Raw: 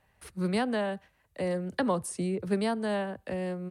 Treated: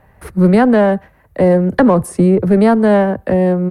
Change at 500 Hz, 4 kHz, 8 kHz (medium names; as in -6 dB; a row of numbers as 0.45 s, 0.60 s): +18.5 dB, no reading, +6.5 dB